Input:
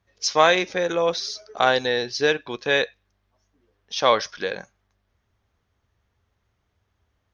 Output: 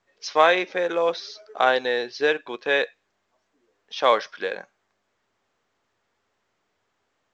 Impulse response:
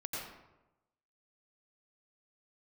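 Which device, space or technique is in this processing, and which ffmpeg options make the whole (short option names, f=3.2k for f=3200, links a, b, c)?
telephone: -af "highpass=300,lowpass=3.2k" -ar 16000 -c:a pcm_mulaw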